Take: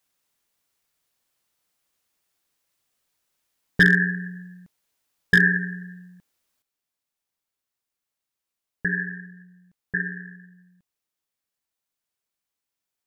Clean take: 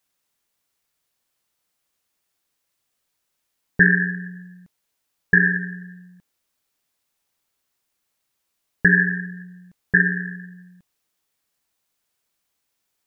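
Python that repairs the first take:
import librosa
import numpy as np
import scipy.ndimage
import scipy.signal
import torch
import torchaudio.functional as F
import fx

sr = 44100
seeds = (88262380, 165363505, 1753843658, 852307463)

y = fx.fix_declip(x, sr, threshold_db=-8.0)
y = fx.gain(y, sr, db=fx.steps((0.0, 0.0), (6.62, 10.0)))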